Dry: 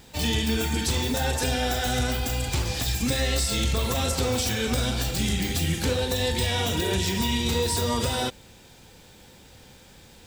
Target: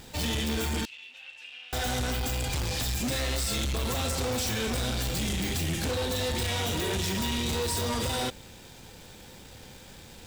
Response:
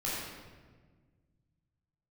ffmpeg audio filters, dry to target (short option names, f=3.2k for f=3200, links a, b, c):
-filter_complex "[0:a]asplit=2[a][b];[b]acrusher=bits=6:dc=4:mix=0:aa=0.000001,volume=-5dB[c];[a][c]amix=inputs=2:normalize=0,asoftclip=type=tanh:threshold=-27dB,asettb=1/sr,asplit=3[d][e][f];[d]atrim=end=0.854[g];[e]atrim=start=0.85:end=1.73,asetpts=PTS-STARTPTS,afade=t=in:d=0.004:c=qsin,afade=t=out:st=0.876:d=0.004:c=qsin,bandpass=f=2.7k:t=q:w=10:csg=0[h];[f]atrim=start=1.726[i];[g][h]acrossfade=d=0.004:c1=hsin:c2=qsin[j];[j][i]acrossfade=d=0.004:c1=qsin:c2=hsin"